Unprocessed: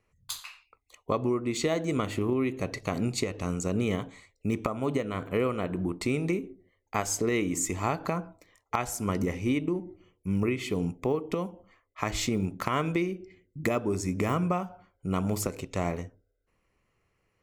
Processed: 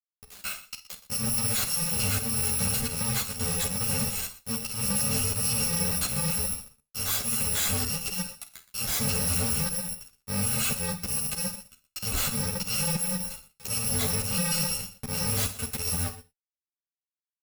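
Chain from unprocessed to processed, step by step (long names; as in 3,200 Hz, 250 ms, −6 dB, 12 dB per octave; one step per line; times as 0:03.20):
samples in bit-reversed order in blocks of 128 samples
in parallel at −1 dB: downward compressor, threshold −39 dBFS, peak gain reduction 16 dB
on the sum: volume swells 715 ms
fuzz pedal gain 54 dB, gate −53 dBFS
on a send: multi-tap delay 49/121 ms −13/−16.5 dB
on the sum: reverb whose tail is shaped and stops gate 120 ms falling, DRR 9 dB
string-ensemble chorus
level −8.5 dB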